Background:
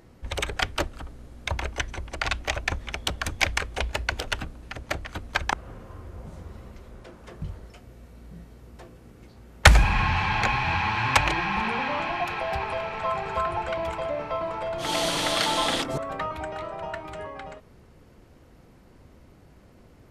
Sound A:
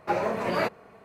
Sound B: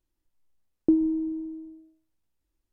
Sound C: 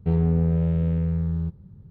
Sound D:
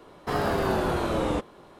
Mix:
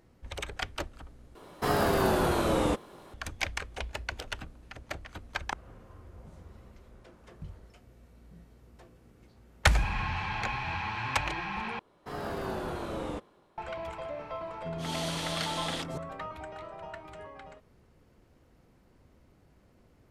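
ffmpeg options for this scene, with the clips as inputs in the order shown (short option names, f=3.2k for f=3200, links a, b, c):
-filter_complex "[4:a]asplit=2[a][b];[0:a]volume=-9dB[c];[a]crystalizer=i=1:c=0[d];[b]dynaudnorm=f=100:g=7:m=5dB[e];[3:a]bandpass=f=250:t=q:w=2.6:csg=0[f];[c]asplit=3[g][h][i];[g]atrim=end=1.354[j];[d]atrim=end=1.79,asetpts=PTS-STARTPTS,volume=-0.5dB[k];[h]atrim=start=3.136:end=11.794[l];[e]atrim=end=1.79,asetpts=PTS-STARTPTS,volume=-14.5dB[m];[i]atrim=start=13.576[n];[f]atrim=end=1.9,asetpts=PTS-STARTPTS,volume=-9.5dB,afade=t=in:d=0.004:c=hsin,afade=t=out:st=1.896:d=0.004:c=hsin,adelay=14590[o];[j][k]acrossfade=d=0.004:c1=hsin:c2=hsin[p];[p][l]acrossfade=d=0.004:c1=hsin:c2=hsin[q];[q][m]acrossfade=d=0.004:c1=hsin:c2=hsin[r];[r][n]acrossfade=d=0.004:c1=hsin:c2=hsin[s];[s][o]amix=inputs=2:normalize=0"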